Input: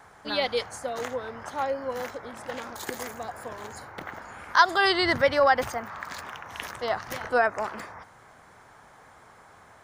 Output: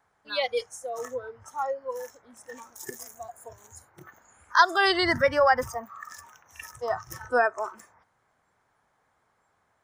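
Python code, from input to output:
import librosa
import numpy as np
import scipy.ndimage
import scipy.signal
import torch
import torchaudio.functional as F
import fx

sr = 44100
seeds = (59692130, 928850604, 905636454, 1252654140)

y = fx.noise_reduce_blind(x, sr, reduce_db=18)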